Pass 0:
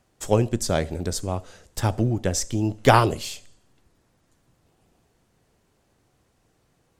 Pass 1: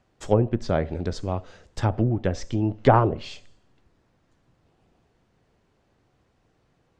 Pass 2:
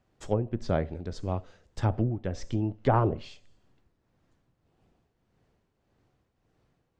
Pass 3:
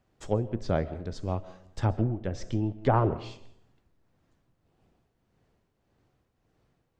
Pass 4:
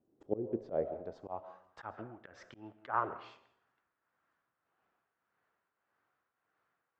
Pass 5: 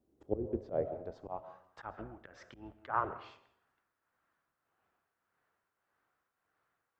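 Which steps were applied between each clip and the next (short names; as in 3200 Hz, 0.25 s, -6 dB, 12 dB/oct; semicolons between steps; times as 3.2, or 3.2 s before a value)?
Bessel low-pass 3900 Hz, order 2; treble ducked by the level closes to 1100 Hz, closed at -16 dBFS
tremolo triangle 1.7 Hz, depth 60%; low shelf 350 Hz +3 dB; gain -4.5 dB
reverb RT60 0.70 s, pre-delay 95 ms, DRR 17 dB
band-pass sweep 320 Hz -> 1400 Hz, 0.23–1.97; auto swell 0.124 s; gain +3 dB
octaver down 2 oct, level -6 dB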